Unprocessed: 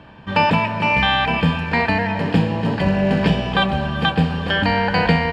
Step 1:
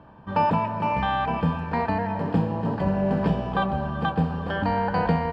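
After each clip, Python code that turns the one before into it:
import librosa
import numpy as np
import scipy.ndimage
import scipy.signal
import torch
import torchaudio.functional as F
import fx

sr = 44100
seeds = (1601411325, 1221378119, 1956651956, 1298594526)

y = fx.high_shelf_res(x, sr, hz=1600.0, db=-9.5, q=1.5)
y = y * librosa.db_to_amplitude(-6.0)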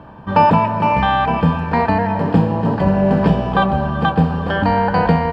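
y = fx.rider(x, sr, range_db=10, speed_s=2.0)
y = y * librosa.db_to_amplitude(8.5)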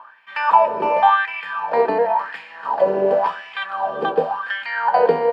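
y = fx.filter_lfo_highpass(x, sr, shape='sine', hz=0.92, low_hz=390.0, high_hz=2200.0, q=5.8)
y = y * librosa.db_to_amplitude(-6.5)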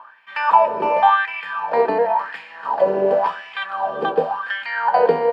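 y = x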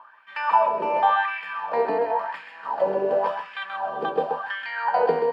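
y = x + 10.0 ** (-7.0 / 20.0) * np.pad(x, (int(131 * sr / 1000.0), 0))[:len(x)]
y = y * librosa.db_to_amplitude(-6.0)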